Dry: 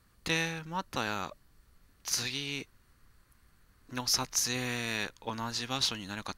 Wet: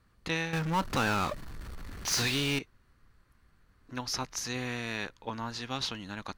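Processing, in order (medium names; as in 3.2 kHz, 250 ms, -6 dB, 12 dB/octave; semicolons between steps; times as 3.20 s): low-pass 2.9 kHz 6 dB/octave; 0.53–2.59 s: power-law waveshaper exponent 0.5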